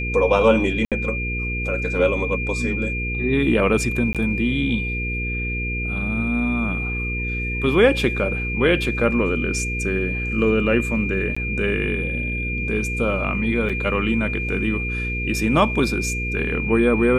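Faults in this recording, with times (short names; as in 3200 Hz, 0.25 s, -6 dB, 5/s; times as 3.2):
hum 60 Hz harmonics 8 -27 dBFS
tone 2400 Hz -26 dBFS
0.85–0.92 gap 67 ms
4.13–4.15 gap 17 ms
11.35–11.37 gap 15 ms
13.69–13.7 gap 5.7 ms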